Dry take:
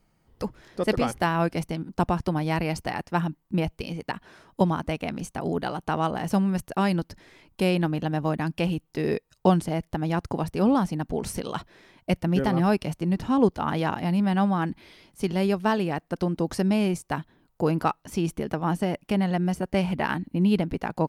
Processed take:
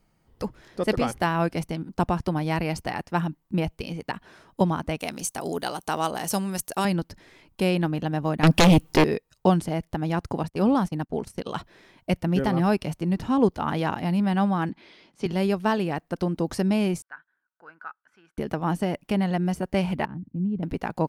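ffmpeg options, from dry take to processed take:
-filter_complex "[0:a]asettb=1/sr,asplit=3[a][b][c];[a]atrim=end=4.994[d];[b]atrim=start=4.99:end=6.85,asetpts=PTS-STARTPTS,afade=t=in:d=0.004:c=qsin,afade=t=out:st=1.856:d=0.004:c=qsin,bass=f=250:g=-8,treble=f=4k:g=14[e];[c]atrim=start=6.846[f];[d][e]acrossfade=d=0.004:c1=hsin:c2=qsin[g];[g][f]acrossfade=d=0.004:c1=qsin:c2=hsin,asettb=1/sr,asplit=3[h][i][j];[h]atrim=end=8.434[k];[i]atrim=start=8.43:end=9.04,asetpts=PTS-STARTPTS,afade=t=in:d=0.004:c=qsin,afade=t=out:st=0.606:d=0.004:c=qsin,aeval=exprs='0.266*sin(PI/2*4.47*val(0)/0.266)':c=same[l];[j]atrim=start=9.036[m];[k][l]acrossfade=d=0.004:c1=hsin:c2=qsin[n];[n][m]acrossfade=d=0.004:c1=qsin:c2=hsin,asettb=1/sr,asplit=3[o][p][q];[o]atrim=end=10.434[r];[p]atrim=start=10.43:end=11.46,asetpts=PTS-STARTPTS,afade=t=in:d=0.004:c=qsin,afade=t=out:st=1.026:d=0.004:c=qsin,agate=range=-20dB:threshold=-32dB:ratio=16:release=100:detection=peak[s];[q]atrim=start=11.456[t];[r][s]acrossfade=d=0.004:c1=hsin:c2=qsin[u];[u][t]acrossfade=d=0.004:c1=qsin:c2=hsin,asettb=1/sr,asplit=3[v][w][x];[v]atrim=end=14.694[y];[w]atrim=start=14.69:end=15.26,asetpts=PTS-STARTPTS,afade=t=in:d=0.004:c=qsin,afade=t=out:st=0.566:d=0.004:c=qsin,acrossover=split=150 6500:gain=0.158 1 0.1[z][aa][ab];[z][aa][ab]amix=inputs=3:normalize=0[ac];[x]atrim=start=15.256[ad];[y][ac]acrossfade=d=0.004:c1=hsin:c2=qsin[ae];[ae][ad]acrossfade=d=0.004:c1=qsin:c2=hsin,asettb=1/sr,asplit=3[af][ag][ah];[af]atrim=end=17.024[ai];[ag]atrim=start=17.02:end=18.38,asetpts=PTS-STARTPTS,afade=t=in:d=0.004:c=qsin,afade=t=out:st=1.356:d=0.004:c=qsin,bandpass=f=1.5k:t=q:w=9.8[aj];[ah]atrim=start=18.376[ak];[ai][aj]acrossfade=d=0.004:c1=hsin:c2=qsin[al];[al][ak]acrossfade=d=0.004:c1=qsin:c2=hsin,asettb=1/sr,asplit=3[am][an][ao];[am]atrim=end=20.054[ap];[an]atrim=start=20.05:end=20.63,asetpts=PTS-STARTPTS,afade=t=in:d=0.004:c=qsin,afade=t=out:st=0.576:d=0.004:c=qsin,bandpass=f=120:t=q:w=1.4[aq];[ao]atrim=start=20.626[ar];[ap][aq]acrossfade=d=0.004:c1=hsin:c2=qsin[as];[as][ar]acrossfade=d=0.004:c1=qsin:c2=hsin"

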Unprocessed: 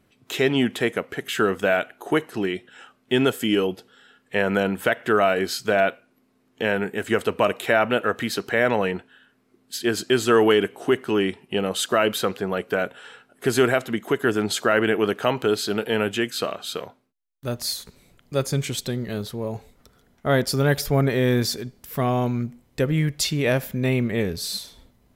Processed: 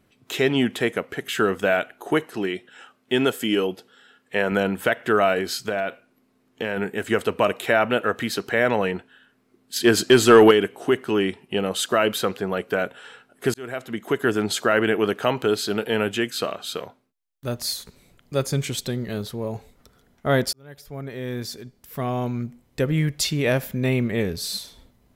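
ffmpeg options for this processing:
-filter_complex "[0:a]asettb=1/sr,asplit=3[a][b][c];[a]atrim=end=2.234[d];[b]atrim=start=2.23:end=4.52,asetpts=PTS-STARTPTS,afade=t=in:d=0.004:c=qsin,afade=t=out:st=2.286:d=0.004:c=qsin,lowshelf=f=93:g=-12[e];[c]atrim=start=4.516[f];[d][e]acrossfade=d=0.004:c1=hsin:c2=qsin[g];[g][f]acrossfade=d=0.004:c1=qsin:c2=hsin,asettb=1/sr,asplit=3[h][i][j];[h]atrim=end=5.394[k];[i]atrim=start=5.39:end=6.77,asetpts=PTS-STARTPTS,afade=t=in:d=0.004:c=qsin,afade=t=out:st=1.376:d=0.004:c=qsin,acompressor=threshold=-21dB:ratio=4:attack=3.2:release=140:knee=1:detection=peak[l];[j]atrim=start=6.766[m];[k][l]acrossfade=d=0.004:c1=hsin:c2=qsin[n];[n][m]acrossfade=d=0.004:c1=qsin:c2=hsin,asettb=1/sr,asplit=3[o][p][q];[o]atrim=end=9.764[r];[p]atrim=start=9.76:end=10.51,asetpts=PTS-STARTPTS,afade=t=in:d=0.004:c=qsin,afade=t=out:st=0.746:d=0.004:c=qsin,acontrast=63[s];[q]atrim=start=10.506[t];[r][s]acrossfade=d=0.004:c1=hsin:c2=qsin[u];[u][t]acrossfade=d=0.004:c1=qsin:c2=hsin,asplit=3[v][w][x];[v]atrim=end=13.54,asetpts=PTS-STARTPTS,afade=t=out:st=13.536:d=0.004:c=hsin[y];[w]atrim=start=13.54:end=20.53,asetpts=PTS-STARTPTS,afade=t=in:d=0.63,afade=t=out:st=6.986:d=0.004:c=hsin[z];[x]atrim=start=20.53,asetpts=PTS-STARTPTS,afade=t=in:d=2.44[aa];[y][z][aa]concat=n=3:v=0:a=1"

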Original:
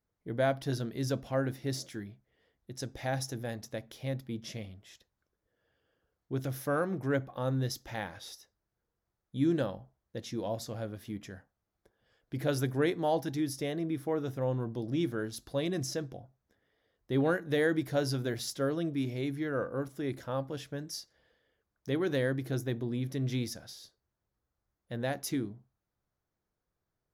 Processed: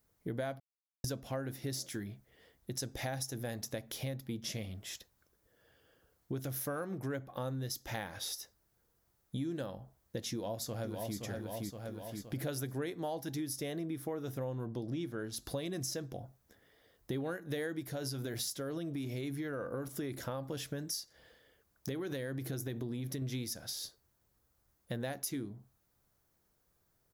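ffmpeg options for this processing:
-filter_complex "[0:a]asplit=2[a][b];[b]afade=t=in:st=10.31:d=0.01,afade=t=out:st=11.18:d=0.01,aecho=0:1:520|1040|1560|2080|2600:0.501187|0.225534|0.10149|0.0456707|0.0205518[c];[a][c]amix=inputs=2:normalize=0,asettb=1/sr,asplit=3[d][e][f];[d]atrim=end=14.664[g];[e]atrim=start=14.66:end=15.45,asetpts=PTS-STARTPTS,afade=t=in:d=0.004:c=qsin,afade=t=out:st=0.786:d=0.004:c=qsin,highshelf=f=7.8k:g=-9[h];[f]atrim=start=15.446[i];[g][h]acrossfade=d=0.004:c1=hsin:c2=qsin[j];[j][i]acrossfade=d=0.004:c1=qsin:c2=hsin,asettb=1/sr,asplit=3[k][l][m];[k]atrim=end=17.894[n];[l]atrim=start=17.89:end=23.22,asetpts=PTS-STARTPTS,afade=t=in:d=0.004:c=qsin,afade=t=out:st=5.326:d=0.004:c=qsin,acompressor=threshold=-32dB:ratio=6:attack=3.2:release=140:knee=1:detection=peak[o];[m]atrim=start=23.216[p];[n][o]acrossfade=d=0.004:c1=hsin:c2=qsin[q];[q][p]acrossfade=d=0.004:c1=qsin:c2=hsin,asplit=3[r][s][t];[r]atrim=end=0.6,asetpts=PTS-STARTPTS,afade=t=out:st=0.596:d=0.004:c=hsin[u];[s]atrim=start=0.6:end=1.04,asetpts=PTS-STARTPTS,volume=0[v];[t]atrim=start=1.04,asetpts=PTS-STARTPTS,afade=t=in:d=0.004:c=hsin[w];[u][v][w]concat=n=3:v=0:a=1,highshelf=f=7k:g=11.5,acompressor=threshold=-44dB:ratio=6,volume=7.5dB"

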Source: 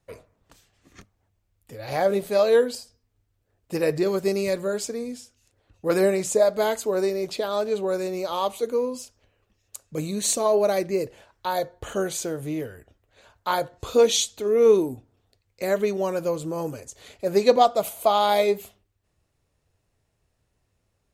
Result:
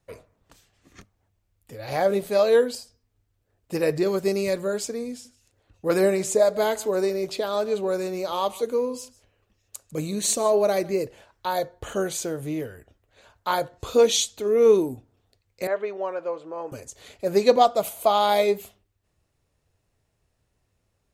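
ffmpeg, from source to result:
-filter_complex "[0:a]asettb=1/sr,asplit=3[a][b][c];[a]atrim=end=5.104[d];[b]atrim=start=5.1:end=11.04,asetpts=PTS-STARTPTS,afade=t=in:d=0.004:c=qsin,afade=t=out:st=5.936:d=0.004:c=qsin,aecho=1:1:150:0.0944,atrim=end_sample=261954[e];[c]atrim=start=11.036[f];[d][e]acrossfade=d=0.004:c1=hsin:c2=qsin[g];[g][f]acrossfade=d=0.004:c1=qsin:c2=hsin,asettb=1/sr,asplit=3[h][i][j];[h]atrim=end=15.674[k];[i]atrim=start=15.67:end=16.72,asetpts=PTS-STARTPTS,afade=t=in:d=0.004:c=qsin,afade=t=out:st=1.046:d=0.004:c=qsin,highpass=540,lowpass=2k[l];[j]atrim=start=16.716[m];[k][l]acrossfade=d=0.004:c1=hsin:c2=qsin[n];[n][m]acrossfade=d=0.004:c1=qsin:c2=hsin"

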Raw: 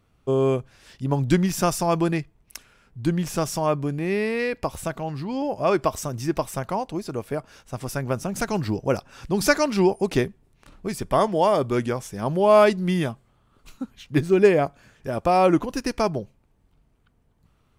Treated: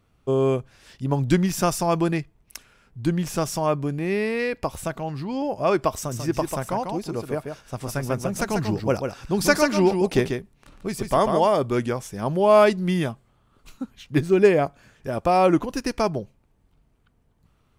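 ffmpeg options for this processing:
-filter_complex "[0:a]asettb=1/sr,asplit=3[a][b][c];[a]atrim=end=5.974[d];[b]atrim=start=5.97:end=11.46,asetpts=PTS-STARTPTS,afade=t=in:d=0.004:c=qsin,afade=t=out:st=5.486:d=0.004:c=qsin,aecho=1:1:142:0.501,atrim=end_sample=242109[e];[c]atrim=start=11.456[f];[d][e]acrossfade=d=0.004:c1=hsin:c2=qsin[g];[g][f]acrossfade=d=0.004:c1=qsin:c2=hsin"

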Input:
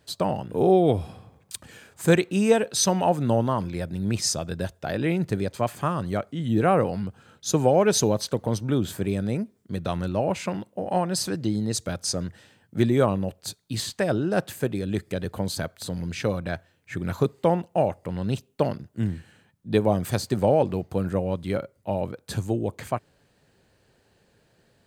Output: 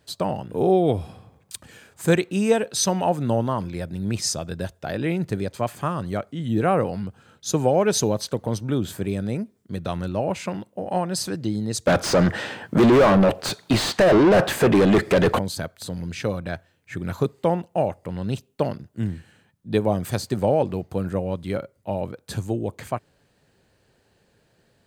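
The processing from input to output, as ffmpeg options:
-filter_complex "[0:a]asettb=1/sr,asplit=3[a][b][c];[a]atrim=end=11.874[d];[b]atrim=start=11.87:end=15.39,asetpts=PTS-STARTPTS,afade=t=in:d=0.004:c=qsin,afade=t=out:st=3.516:d=0.004:c=qsin,asplit=2[e][f];[f]highpass=f=720:p=1,volume=37dB,asoftclip=type=tanh:threshold=-7dB[g];[e][g]amix=inputs=2:normalize=0,lowpass=f=1.2k:p=1,volume=-6dB[h];[c]atrim=start=15.386[i];[d][h]acrossfade=d=0.004:c1=hsin:c2=qsin[j];[j][i]acrossfade=d=0.004:c1=qsin:c2=hsin"

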